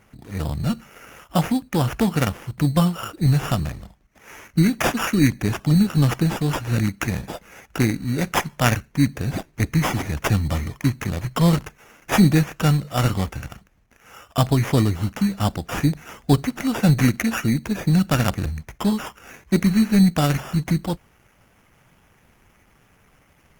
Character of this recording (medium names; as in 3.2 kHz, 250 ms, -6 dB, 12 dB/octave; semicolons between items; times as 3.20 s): aliases and images of a low sample rate 4.2 kHz, jitter 0%; Opus